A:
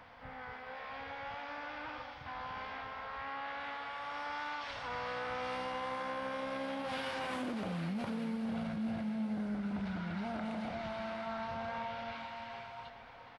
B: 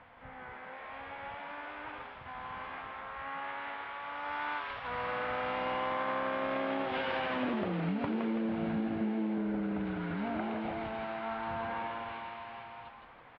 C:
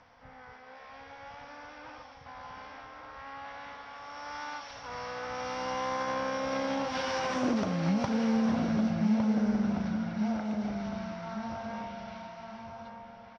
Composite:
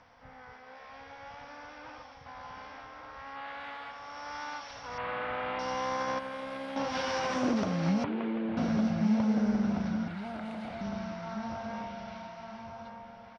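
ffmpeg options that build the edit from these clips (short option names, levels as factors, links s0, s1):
-filter_complex "[0:a]asplit=3[s0][s1][s2];[1:a]asplit=2[s3][s4];[2:a]asplit=6[s5][s6][s7][s8][s9][s10];[s5]atrim=end=3.362[s11];[s0]atrim=start=3.358:end=3.912[s12];[s6]atrim=start=3.908:end=4.982[s13];[s3]atrim=start=4.978:end=5.592[s14];[s7]atrim=start=5.588:end=6.192[s15];[s1]atrim=start=6.188:end=6.762[s16];[s8]atrim=start=6.758:end=8.042[s17];[s4]atrim=start=8.038:end=8.572[s18];[s9]atrim=start=8.568:end=10.082[s19];[s2]atrim=start=10.078:end=10.812[s20];[s10]atrim=start=10.808[s21];[s11][s12]acrossfade=d=0.004:c1=hsin:c2=hsin[s22];[s22][s13]acrossfade=d=0.004:c1=hsin:c2=hsin[s23];[s23][s14]acrossfade=d=0.004:c1=hsin:c2=hsin[s24];[s24][s15]acrossfade=d=0.004:c1=hsin:c2=hsin[s25];[s25][s16]acrossfade=d=0.004:c1=hsin:c2=hsin[s26];[s26][s17]acrossfade=d=0.004:c1=hsin:c2=hsin[s27];[s27][s18]acrossfade=d=0.004:c1=hsin:c2=hsin[s28];[s28][s19]acrossfade=d=0.004:c1=hsin:c2=hsin[s29];[s29][s20]acrossfade=d=0.004:c1=hsin:c2=hsin[s30];[s30][s21]acrossfade=d=0.004:c1=hsin:c2=hsin"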